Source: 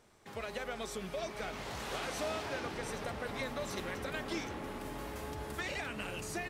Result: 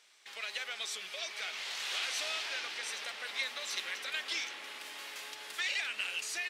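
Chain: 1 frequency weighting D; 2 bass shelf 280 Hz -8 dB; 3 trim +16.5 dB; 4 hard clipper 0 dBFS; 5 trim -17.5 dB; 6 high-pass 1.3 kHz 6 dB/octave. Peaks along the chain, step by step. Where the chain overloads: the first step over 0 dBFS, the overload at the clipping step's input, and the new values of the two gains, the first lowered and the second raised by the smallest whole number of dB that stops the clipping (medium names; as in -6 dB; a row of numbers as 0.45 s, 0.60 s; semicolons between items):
-18.5 dBFS, -19.0 dBFS, -2.5 dBFS, -2.5 dBFS, -20.0 dBFS, -21.0 dBFS; nothing clips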